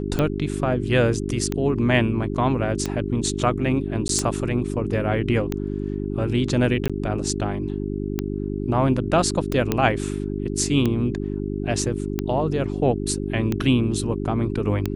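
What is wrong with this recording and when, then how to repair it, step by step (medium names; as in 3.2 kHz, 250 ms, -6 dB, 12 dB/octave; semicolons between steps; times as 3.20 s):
hum 50 Hz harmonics 8 -27 dBFS
tick 45 rpm -10 dBFS
4.08–4.09 s: dropout 12 ms
6.88–6.90 s: dropout 16 ms
9.72 s: pop -7 dBFS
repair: de-click; de-hum 50 Hz, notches 8; interpolate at 4.08 s, 12 ms; interpolate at 6.88 s, 16 ms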